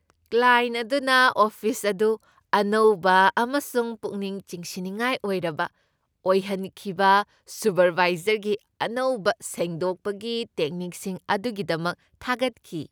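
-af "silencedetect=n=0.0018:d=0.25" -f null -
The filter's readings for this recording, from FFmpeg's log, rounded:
silence_start: 5.78
silence_end: 6.25 | silence_duration: 0.47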